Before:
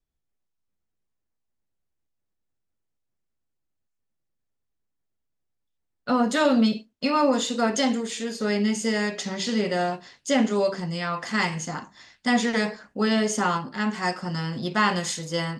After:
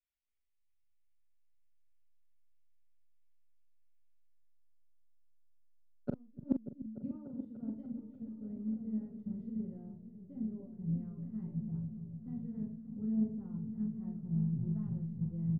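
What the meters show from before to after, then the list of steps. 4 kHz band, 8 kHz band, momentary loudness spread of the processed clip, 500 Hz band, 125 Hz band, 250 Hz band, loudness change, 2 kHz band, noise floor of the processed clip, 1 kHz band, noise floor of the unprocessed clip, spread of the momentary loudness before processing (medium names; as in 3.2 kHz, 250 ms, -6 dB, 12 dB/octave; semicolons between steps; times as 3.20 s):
under -40 dB, under -40 dB, 10 LU, -27.5 dB, -4.5 dB, -12.0 dB, -15.0 dB, under -40 dB, -72 dBFS, under -40 dB, -79 dBFS, 8 LU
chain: compression 2:1, threshold -28 dBFS, peak gain reduction 7.5 dB; feedback comb 110 Hz, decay 0.96 s, harmonics all, mix 60%; low-pass sweep 2.2 kHz -> 100 Hz, 4.26–7.21 s; inverted gate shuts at -30 dBFS, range -37 dB; doubling 42 ms -7.5 dB; delay with an opening low-pass 294 ms, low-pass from 200 Hz, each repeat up 1 oct, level -3 dB; three bands expanded up and down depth 70%; trim +7.5 dB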